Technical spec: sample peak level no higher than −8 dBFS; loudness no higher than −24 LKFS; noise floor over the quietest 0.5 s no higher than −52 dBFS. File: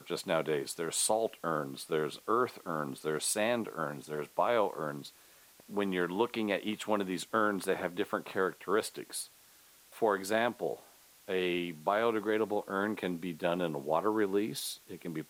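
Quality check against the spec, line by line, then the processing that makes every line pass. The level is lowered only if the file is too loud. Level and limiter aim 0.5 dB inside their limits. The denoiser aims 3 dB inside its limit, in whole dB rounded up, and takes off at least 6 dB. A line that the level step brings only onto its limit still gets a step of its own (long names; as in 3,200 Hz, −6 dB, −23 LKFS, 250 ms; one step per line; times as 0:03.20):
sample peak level −15.0 dBFS: in spec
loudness −33.0 LKFS: in spec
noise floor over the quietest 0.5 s −60 dBFS: in spec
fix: no processing needed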